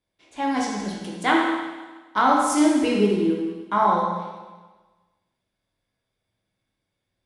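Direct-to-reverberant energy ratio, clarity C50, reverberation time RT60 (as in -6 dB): -3.5 dB, 0.5 dB, 1.3 s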